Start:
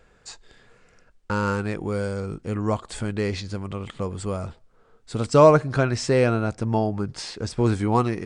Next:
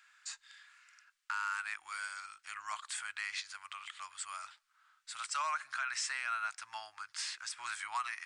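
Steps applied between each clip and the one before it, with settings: inverse Chebyshev high-pass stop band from 500 Hz, stop band 50 dB; dynamic EQ 4500 Hz, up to -6 dB, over -48 dBFS, Q 1.1; limiter -26.5 dBFS, peak gain reduction 9.5 dB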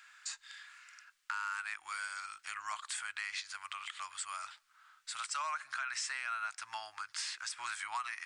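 compressor 2:1, threshold -47 dBFS, peak gain reduction 8.5 dB; gain +6 dB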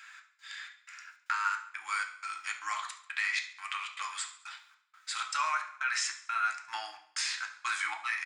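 step gate "xx..xxx..xxx.x" 155 bpm -60 dB; feedback echo 70 ms, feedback 56%, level -19 dB; reverb RT60 0.50 s, pre-delay 3 ms, DRR 1 dB; gain +3 dB

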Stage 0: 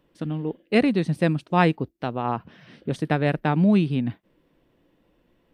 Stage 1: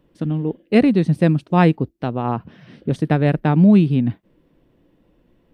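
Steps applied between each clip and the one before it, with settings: low shelf 490 Hz +8 dB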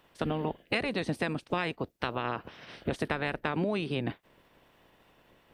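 spectral limiter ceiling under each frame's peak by 23 dB; compressor 12:1, threshold -22 dBFS, peak gain reduction 15 dB; gain -4.5 dB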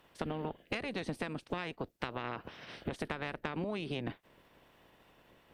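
tube stage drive 16 dB, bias 0.65; compressor 5:1, threshold -36 dBFS, peak gain reduction 9 dB; gain +2.5 dB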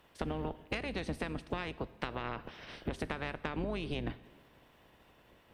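octaver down 2 oct, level -3 dB; plate-style reverb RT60 1.4 s, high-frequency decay 0.95×, DRR 15.5 dB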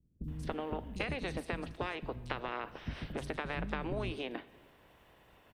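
three bands offset in time lows, highs, mids 0.24/0.28 s, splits 240/4800 Hz; gain +1 dB

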